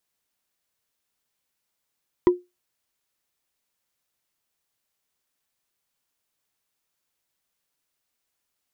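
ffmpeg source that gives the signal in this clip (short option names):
-f lavfi -i "aevalsrc='0.376*pow(10,-3*t/0.21)*sin(2*PI*357*t)+0.119*pow(10,-3*t/0.062)*sin(2*PI*984.2*t)+0.0376*pow(10,-3*t/0.028)*sin(2*PI*1929.2*t)+0.0119*pow(10,-3*t/0.015)*sin(2*PI*3189.1*t)+0.00376*pow(10,-3*t/0.009)*sin(2*PI*4762.4*t)':d=0.45:s=44100"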